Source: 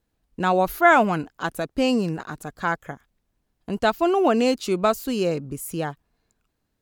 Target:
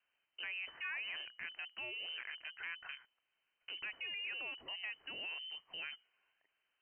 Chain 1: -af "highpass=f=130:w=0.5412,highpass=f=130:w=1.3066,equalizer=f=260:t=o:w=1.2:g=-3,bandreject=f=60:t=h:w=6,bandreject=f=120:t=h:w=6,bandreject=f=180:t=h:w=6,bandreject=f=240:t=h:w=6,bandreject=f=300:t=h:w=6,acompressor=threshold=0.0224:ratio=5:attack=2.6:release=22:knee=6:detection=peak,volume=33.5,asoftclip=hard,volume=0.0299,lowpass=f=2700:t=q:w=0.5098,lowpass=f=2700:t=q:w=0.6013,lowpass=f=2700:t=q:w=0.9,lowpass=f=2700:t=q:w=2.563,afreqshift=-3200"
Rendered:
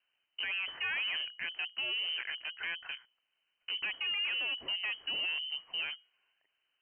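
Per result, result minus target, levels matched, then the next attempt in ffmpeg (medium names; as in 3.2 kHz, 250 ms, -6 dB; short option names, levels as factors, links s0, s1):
compression: peak gain reduction -8 dB; 250 Hz band -4.0 dB
-af "highpass=f=130:w=0.5412,highpass=f=130:w=1.3066,equalizer=f=260:t=o:w=1.2:g=-3,bandreject=f=60:t=h:w=6,bandreject=f=120:t=h:w=6,bandreject=f=180:t=h:w=6,bandreject=f=240:t=h:w=6,bandreject=f=300:t=h:w=6,acompressor=threshold=0.00596:ratio=5:attack=2.6:release=22:knee=6:detection=peak,volume=33.5,asoftclip=hard,volume=0.0299,lowpass=f=2700:t=q:w=0.5098,lowpass=f=2700:t=q:w=0.6013,lowpass=f=2700:t=q:w=0.9,lowpass=f=2700:t=q:w=2.563,afreqshift=-3200"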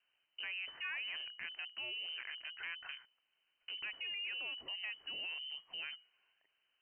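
250 Hz band -4.0 dB
-af "highpass=f=130:w=0.5412,highpass=f=130:w=1.3066,equalizer=f=260:t=o:w=1.2:g=-14.5,bandreject=f=60:t=h:w=6,bandreject=f=120:t=h:w=6,bandreject=f=180:t=h:w=6,bandreject=f=240:t=h:w=6,bandreject=f=300:t=h:w=6,acompressor=threshold=0.00596:ratio=5:attack=2.6:release=22:knee=6:detection=peak,volume=33.5,asoftclip=hard,volume=0.0299,lowpass=f=2700:t=q:w=0.5098,lowpass=f=2700:t=q:w=0.6013,lowpass=f=2700:t=q:w=0.9,lowpass=f=2700:t=q:w=2.563,afreqshift=-3200"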